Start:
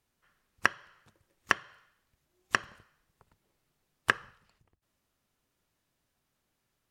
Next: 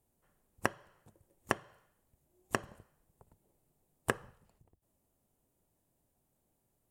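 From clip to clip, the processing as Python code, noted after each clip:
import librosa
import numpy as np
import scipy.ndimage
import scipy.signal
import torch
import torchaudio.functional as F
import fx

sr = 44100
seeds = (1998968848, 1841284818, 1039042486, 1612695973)

y = fx.band_shelf(x, sr, hz=2600.0, db=-13.5, octaves=2.7)
y = y * 10.0 ** (3.5 / 20.0)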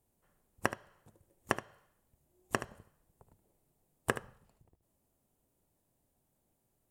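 y = x + 10.0 ** (-12.0 / 20.0) * np.pad(x, (int(74 * sr / 1000.0), 0))[:len(x)]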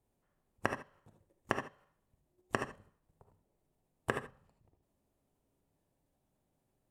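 y = fx.level_steps(x, sr, step_db=10)
y = fx.high_shelf(y, sr, hz=6500.0, db=-12.0)
y = fx.rev_gated(y, sr, seeds[0], gate_ms=100, shape='rising', drr_db=6.5)
y = y * 10.0 ** (1.0 / 20.0)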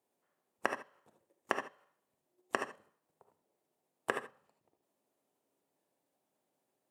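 y = scipy.signal.sosfilt(scipy.signal.butter(2, 330.0, 'highpass', fs=sr, output='sos'), x)
y = y * 10.0 ** (1.0 / 20.0)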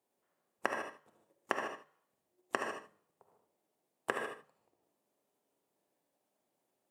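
y = fx.hum_notches(x, sr, base_hz=50, count=3)
y = fx.rev_gated(y, sr, seeds[1], gate_ms=170, shape='rising', drr_db=5.0)
y = y * 10.0 ** (-1.0 / 20.0)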